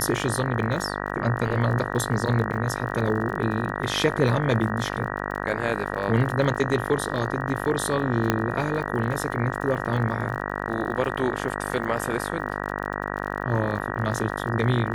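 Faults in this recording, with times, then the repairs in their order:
mains buzz 50 Hz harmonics 38 −30 dBFS
surface crackle 40 per second −33 dBFS
0:08.30: click −6 dBFS
0:13.79–0:13.80: drop-out 8 ms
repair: click removal
hum removal 50 Hz, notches 38
repair the gap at 0:13.79, 8 ms

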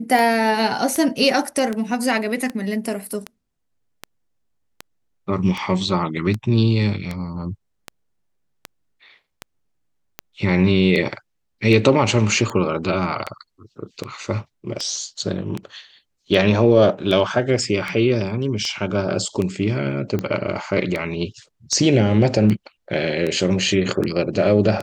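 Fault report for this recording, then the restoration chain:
scratch tick 78 rpm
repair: click removal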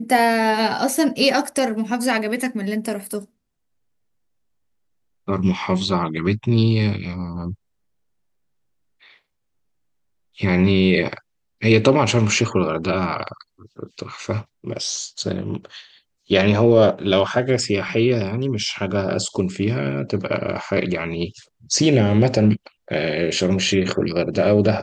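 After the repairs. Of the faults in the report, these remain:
none of them is left

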